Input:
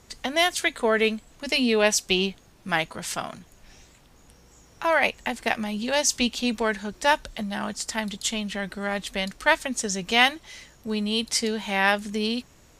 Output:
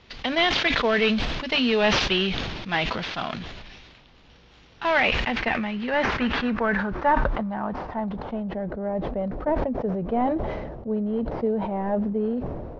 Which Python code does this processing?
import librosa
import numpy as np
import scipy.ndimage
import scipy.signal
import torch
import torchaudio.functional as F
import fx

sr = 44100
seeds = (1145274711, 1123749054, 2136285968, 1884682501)

y = fx.cvsd(x, sr, bps=32000)
y = fx.filter_sweep_lowpass(y, sr, from_hz=3400.0, to_hz=610.0, start_s=4.76, end_s=8.73, q=1.7)
y = fx.sustainer(y, sr, db_per_s=31.0)